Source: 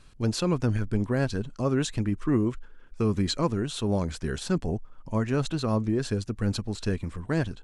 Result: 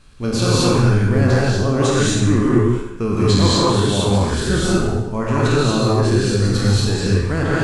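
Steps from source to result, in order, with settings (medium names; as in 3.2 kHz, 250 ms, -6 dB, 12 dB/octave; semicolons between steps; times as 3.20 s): spectral sustain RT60 0.86 s; gated-style reverb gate 260 ms rising, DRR -6 dB; trim +2.5 dB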